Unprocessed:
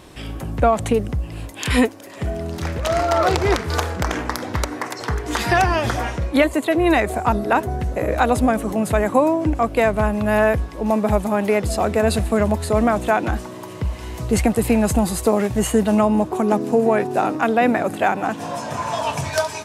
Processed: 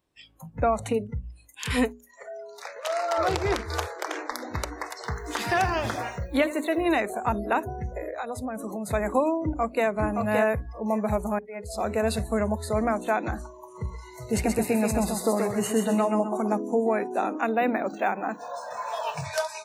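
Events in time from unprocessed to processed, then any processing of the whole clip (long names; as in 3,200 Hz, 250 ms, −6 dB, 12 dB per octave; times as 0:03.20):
0:02.02–0:03.18: high-pass filter 420 Hz
0:03.86–0:04.31: Butterworth high-pass 270 Hz 72 dB per octave
0:04.95–0:06.87: feedback echo at a low word length 82 ms, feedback 55%, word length 6 bits, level −15 dB
0:07.94–0:08.87: downward compressor 10 to 1, threshold −20 dBFS
0:09.44–0:09.86: delay throw 570 ms, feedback 15%, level −4 dB
0:11.39–0:11.88: fade in
0:13.61–0:16.48: feedback echo with a high-pass in the loop 130 ms, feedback 38%, high-pass 250 Hz, level −4 dB
0:17.47–0:19.25: linearly interpolated sample-rate reduction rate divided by 3×
whole clip: noise reduction from a noise print of the clip's start 26 dB; mains-hum notches 60/120/180/240/300/360/420 Hz; level −7 dB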